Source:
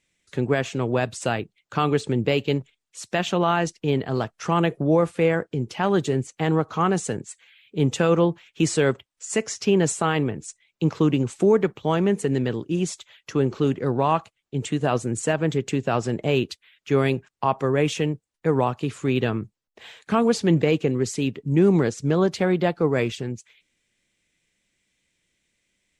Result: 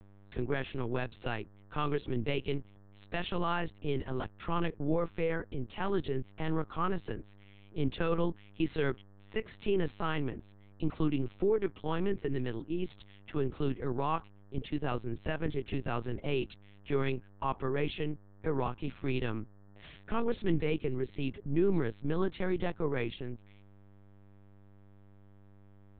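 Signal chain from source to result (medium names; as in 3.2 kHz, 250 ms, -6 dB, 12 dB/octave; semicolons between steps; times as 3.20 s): mains buzz 100 Hz, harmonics 19, -47 dBFS -8 dB/octave; LPC vocoder at 8 kHz pitch kept; dynamic bell 610 Hz, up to -6 dB, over -35 dBFS, Q 2; trim -9 dB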